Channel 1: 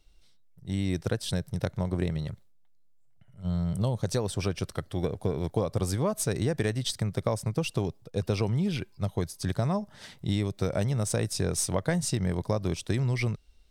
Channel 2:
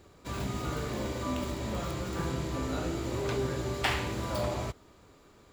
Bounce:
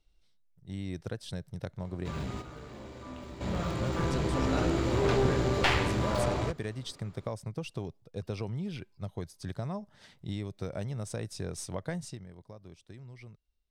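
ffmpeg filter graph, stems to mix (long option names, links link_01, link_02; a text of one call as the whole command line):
ffmpeg -i stem1.wav -i stem2.wav -filter_complex "[0:a]volume=-8.5dB,afade=type=out:start_time=11.96:duration=0.3:silence=0.237137,asplit=2[link_01][link_02];[1:a]aeval=exprs='clip(val(0),-1,0.02)':channel_layout=same,equalizer=frequency=16000:width_type=o:width=0.84:gain=-10,dynaudnorm=framelen=670:gausssize=7:maxgain=12.5dB,adelay=1800,volume=-2dB[link_03];[link_02]apad=whole_len=322954[link_04];[link_03][link_04]sidechaingate=range=-9dB:threshold=-53dB:ratio=16:detection=peak[link_05];[link_01][link_05]amix=inputs=2:normalize=0,highshelf=frequency=8800:gain=-9" out.wav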